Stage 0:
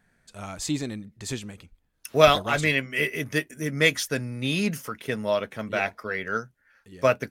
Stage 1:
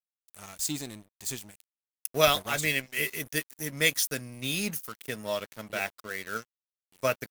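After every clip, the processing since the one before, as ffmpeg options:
-af "aeval=exprs='sgn(val(0))*max(abs(val(0))-0.00944,0)':c=same,aemphasis=mode=production:type=75fm,volume=0.501"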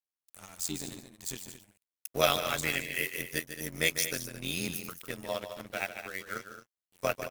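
-filter_complex "[0:a]tremolo=f=87:d=0.857,asplit=2[s0][s1];[s1]aecho=0:1:148.7|218.7:0.316|0.251[s2];[s0][s2]amix=inputs=2:normalize=0"

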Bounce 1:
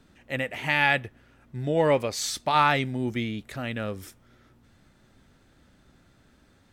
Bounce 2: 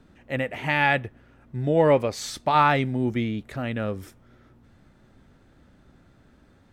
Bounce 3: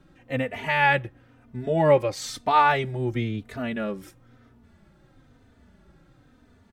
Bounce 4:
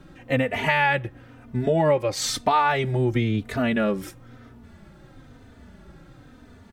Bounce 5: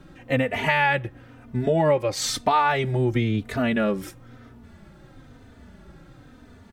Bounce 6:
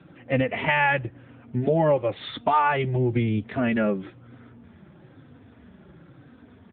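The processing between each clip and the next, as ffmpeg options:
-af "highshelf=f=2200:g=-9.5,volume=1.58"
-filter_complex "[0:a]asplit=2[s0][s1];[s1]adelay=3.2,afreqshift=-1[s2];[s0][s2]amix=inputs=2:normalize=1,volume=1.33"
-af "acompressor=threshold=0.0447:ratio=4,volume=2.66"
-af anull
-ar 8000 -c:a libopencore_amrnb -b:a 7950

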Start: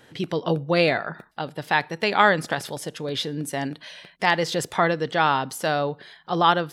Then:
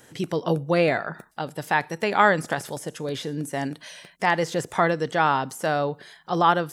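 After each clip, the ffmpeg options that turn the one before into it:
-filter_complex "[0:a]highshelf=f=5300:t=q:w=1.5:g=8.5,acrossover=split=2800[s0][s1];[s1]acompressor=threshold=0.0141:ratio=4:attack=1:release=60[s2];[s0][s2]amix=inputs=2:normalize=0"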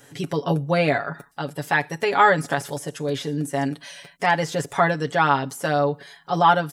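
-af "aecho=1:1:7.1:0.73"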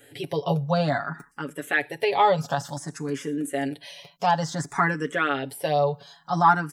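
-filter_complex "[0:a]asplit=2[s0][s1];[s1]afreqshift=0.56[s2];[s0][s2]amix=inputs=2:normalize=1"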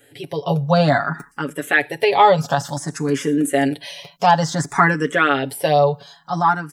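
-af "dynaudnorm=f=130:g=9:m=3.55"

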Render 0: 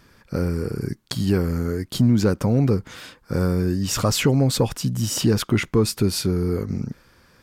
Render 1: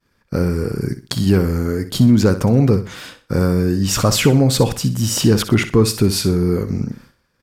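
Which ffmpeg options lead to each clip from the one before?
-af "agate=range=0.0224:threshold=0.00708:ratio=3:detection=peak,aecho=1:1:62|124|186:0.251|0.0754|0.0226,volume=1.78"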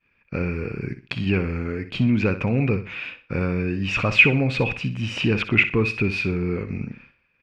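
-af "lowpass=f=2500:t=q:w=15,volume=0.398"

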